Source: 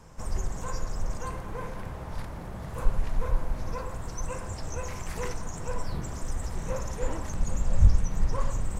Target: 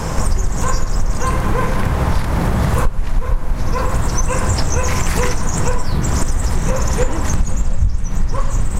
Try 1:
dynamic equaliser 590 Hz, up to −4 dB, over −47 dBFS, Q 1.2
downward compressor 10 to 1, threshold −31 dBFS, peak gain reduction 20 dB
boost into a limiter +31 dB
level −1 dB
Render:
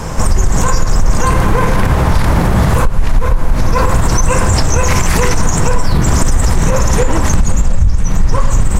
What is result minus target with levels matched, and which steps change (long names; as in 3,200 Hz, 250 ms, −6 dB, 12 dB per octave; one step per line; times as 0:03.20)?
downward compressor: peak gain reduction −9.5 dB
change: downward compressor 10 to 1, threshold −41.5 dBFS, peak gain reduction 29.5 dB